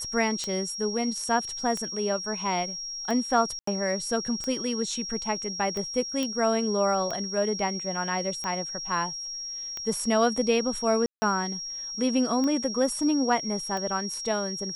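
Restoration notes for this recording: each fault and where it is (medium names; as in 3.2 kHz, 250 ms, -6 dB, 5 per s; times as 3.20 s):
tick 45 rpm -19 dBFS
whine 5.6 kHz -33 dBFS
3.59–3.67 s: dropout 84 ms
6.23 s: pop -15 dBFS
11.06–11.22 s: dropout 160 ms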